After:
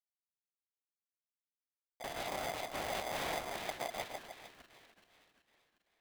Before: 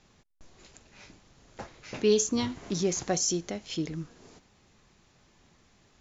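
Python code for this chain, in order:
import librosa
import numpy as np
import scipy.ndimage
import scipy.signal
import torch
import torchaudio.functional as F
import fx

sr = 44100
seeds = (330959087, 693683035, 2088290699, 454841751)

p1 = fx.bit_reversed(x, sr, seeds[0], block=64)
p2 = fx.dynamic_eq(p1, sr, hz=220.0, q=1.1, threshold_db=-42.0, ratio=4.0, max_db=-5)
p3 = fx.level_steps(p2, sr, step_db=12)
p4 = fx.transient(p3, sr, attack_db=-11, sustain_db=4)
p5 = fx.schmitt(p4, sr, flips_db=-34.0)
p6 = p5 + fx.echo_split(p5, sr, split_hz=750.0, low_ms=150, high_ms=386, feedback_pct=52, wet_db=-3, dry=0)
p7 = fx.lpc_vocoder(p6, sr, seeds[1], excitation='whisper', order=8)
p8 = p7 * np.sign(np.sin(2.0 * np.pi * 690.0 * np.arange(len(p7)) / sr))
y = p8 * librosa.db_to_amplitude(2.0)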